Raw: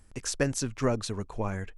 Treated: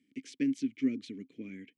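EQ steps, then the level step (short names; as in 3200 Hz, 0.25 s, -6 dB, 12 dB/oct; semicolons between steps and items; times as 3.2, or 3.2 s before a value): vowel filter i; HPF 130 Hz 24 dB/oct; band shelf 950 Hz -10.5 dB; +5.5 dB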